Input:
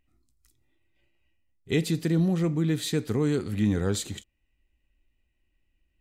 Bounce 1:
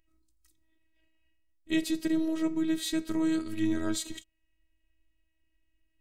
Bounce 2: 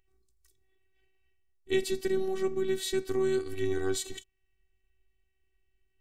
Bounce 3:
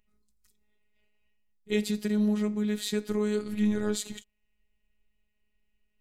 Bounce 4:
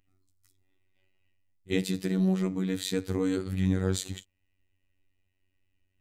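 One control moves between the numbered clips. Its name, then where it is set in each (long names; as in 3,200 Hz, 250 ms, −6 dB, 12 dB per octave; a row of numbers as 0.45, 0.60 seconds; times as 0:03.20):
phases set to zero, frequency: 320, 380, 210, 94 Hertz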